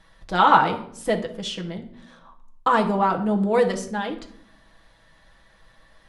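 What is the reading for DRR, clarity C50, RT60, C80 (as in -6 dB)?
2.0 dB, 11.5 dB, 0.65 s, 15.5 dB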